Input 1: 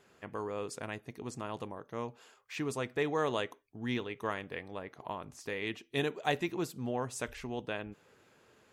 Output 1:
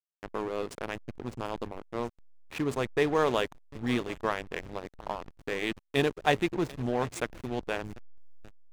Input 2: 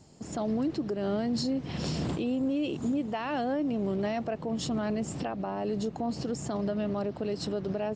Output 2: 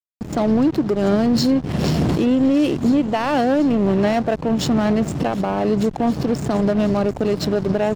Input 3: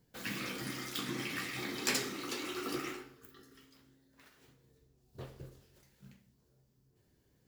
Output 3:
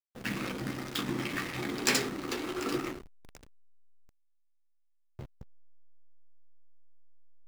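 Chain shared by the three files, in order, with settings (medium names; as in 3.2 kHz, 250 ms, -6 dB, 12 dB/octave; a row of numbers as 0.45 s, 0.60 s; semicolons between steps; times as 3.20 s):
thinning echo 740 ms, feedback 55%, high-pass 970 Hz, level -12.5 dB; hysteresis with a dead band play -34.5 dBFS; peak normalisation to -9 dBFS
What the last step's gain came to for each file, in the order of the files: +6.5 dB, +13.5 dB, +6.5 dB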